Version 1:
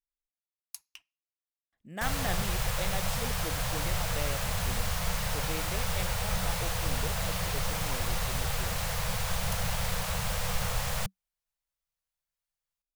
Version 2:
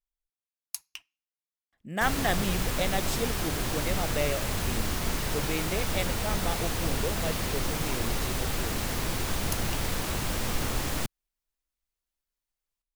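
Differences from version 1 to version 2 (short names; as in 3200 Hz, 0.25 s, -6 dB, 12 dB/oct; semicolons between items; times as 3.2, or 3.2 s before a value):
speech +7.5 dB; background: remove Chebyshev band-stop 190–470 Hz, order 4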